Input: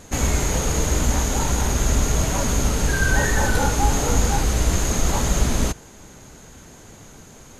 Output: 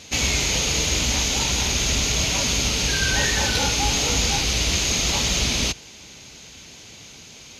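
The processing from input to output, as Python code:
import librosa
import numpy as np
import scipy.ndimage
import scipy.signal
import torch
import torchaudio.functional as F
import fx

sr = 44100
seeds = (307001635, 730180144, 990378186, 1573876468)

y = scipy.signal.sosfilt(scipy.signal.butter(2, 51.0, 'highpass', fs=sr, output='sos'), x)
y = fx.band_shelf(y, sr, hz=3600.0, db=15.0, octaves=1.7)
y = y * librosa.db_to_amplitude(-4.0)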